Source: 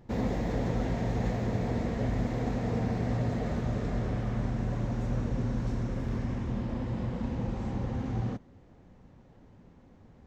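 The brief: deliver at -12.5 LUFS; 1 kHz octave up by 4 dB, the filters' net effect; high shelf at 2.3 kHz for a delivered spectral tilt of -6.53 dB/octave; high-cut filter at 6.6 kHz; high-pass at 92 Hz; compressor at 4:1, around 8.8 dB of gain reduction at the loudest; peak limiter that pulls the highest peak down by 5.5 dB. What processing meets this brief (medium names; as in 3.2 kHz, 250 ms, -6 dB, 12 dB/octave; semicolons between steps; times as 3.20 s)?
high-pass 92 Hz; low-pass 6.6 kHz; peaking EQ 1 kHz +4 dB; treble shelf 2.3 kHz +9 dB; compression 4:1, threshold -37 dBFS; trim +29 dB; peak limiter -3 dBFS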